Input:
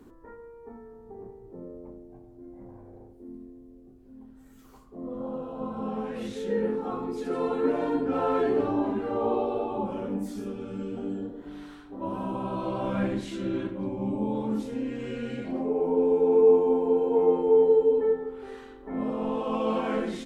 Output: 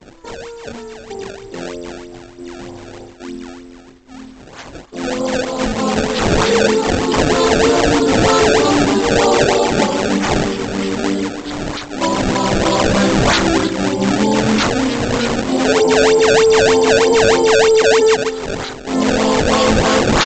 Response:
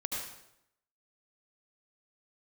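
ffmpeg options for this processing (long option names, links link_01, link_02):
-af "agate=range=-33dB:threshold=-47dB:ratio=3:detection=peak,lowshelf=frequency=330:gain=-7,aexciter=amount=9.1:drive=8.9:freq=3700,apsyclip=25.5dB,aresample=16000,acrusher=samples=9:mix=1:aa=0.000001:lfo=1:lforange=14.4:lforate=3.2,aresample=44100,volume=-7dB"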